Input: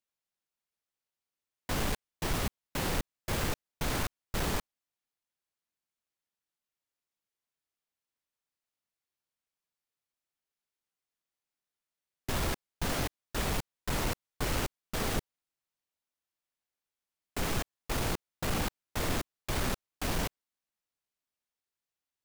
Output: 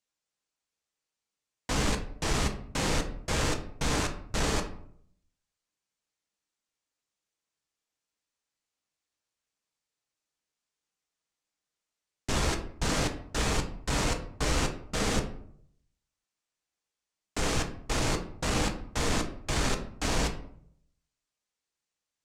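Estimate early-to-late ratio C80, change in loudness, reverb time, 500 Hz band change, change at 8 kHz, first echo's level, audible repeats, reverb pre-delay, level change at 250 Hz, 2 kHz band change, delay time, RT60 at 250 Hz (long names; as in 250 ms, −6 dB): 14.5 dB, +4.0 dB, 0.65 s, +4.5 dB, +5.5 dB, no echo audible, no echo audible, 3 ms, +4.5 dB, +4.0 dB, no echo audible, 0.75 s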